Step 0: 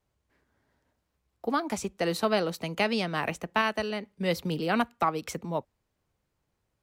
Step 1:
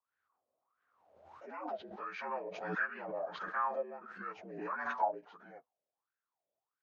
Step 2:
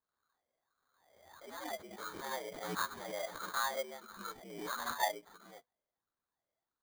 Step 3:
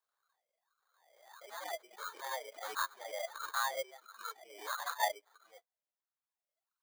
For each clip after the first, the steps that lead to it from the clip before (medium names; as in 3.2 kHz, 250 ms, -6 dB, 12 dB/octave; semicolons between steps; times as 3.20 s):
frequency axis rescaled in octaves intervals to 80%; wah-wah 1.5 Hz 570–1600 Hz, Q 8.4; swell ahead of each attack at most 51 dB/s; trim +2.5 dB
sample-rate reducer 2.7 kHz, jitter 0%; trim -1.5 dB
high-pass 510 Hz 24 dB/octave; reverb removal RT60 1.5 s; in parallel at -12 dB: saturation -30.5 dBFS, distortion -10 dB